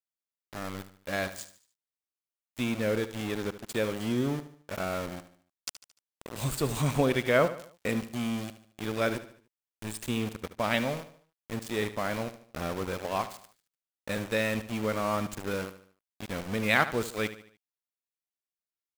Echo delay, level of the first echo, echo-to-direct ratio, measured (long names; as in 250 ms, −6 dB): 74 ms, −13.5 dB, −12.5 dB